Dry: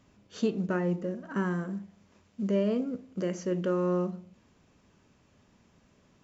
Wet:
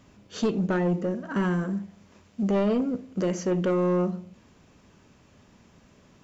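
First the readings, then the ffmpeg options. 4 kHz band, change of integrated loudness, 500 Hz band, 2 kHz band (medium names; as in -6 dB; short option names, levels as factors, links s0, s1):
+5.5 dB, +4.5 dB, +4.0 dB, +4.0 dB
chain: -af "asoftclip=type=tanh:threshold=0.0531,volume=2.24"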